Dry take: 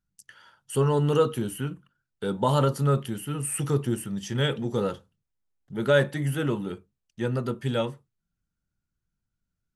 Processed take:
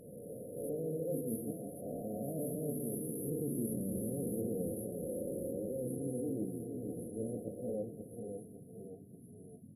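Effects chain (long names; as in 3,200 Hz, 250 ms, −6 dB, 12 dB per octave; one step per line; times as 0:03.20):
peak hold with a rise ahead of every peak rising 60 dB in 2.54 s
source passing by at 0:03.66, 30 m/s, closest 21 metres
mains-hum notches 50/100/150/200 Hz
noise gate −36 dBFS, range −14 dB
parametric band 68 Hz −5 dB 1.9 octaves
comb filter 3.9 ms, depth 42%
dynamic equaliser 570 Hz, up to −6 dB, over −39 dBFS, Q 1.4
reversed playback
downward compressor 6 to 1, threshold −49 dBFS, peak gain reduction 25.5 dB
reversed playback
noise in a band 94–280 Hz −70 dBFS
delay with pitch and tempo change per echo 85 ms, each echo −1 semitone, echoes 3, each echo −6 dB
linear-phase brick-wall band-stop 740–10,000 Hz
on a send: delay with a high-pass on its return 1,115 ms, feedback 52%, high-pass 2,400 Hz, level −3.5 dB
on the sum: level +12.5 dB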